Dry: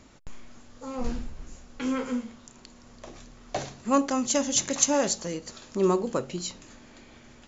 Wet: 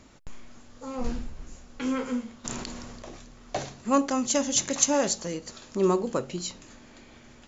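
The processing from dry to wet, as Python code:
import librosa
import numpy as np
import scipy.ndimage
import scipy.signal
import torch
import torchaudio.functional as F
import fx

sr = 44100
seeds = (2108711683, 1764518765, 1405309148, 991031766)

y = fx.sustainer(x, sr, db_per_s=21.0, at=(2.44, 3.15), fade=0.02)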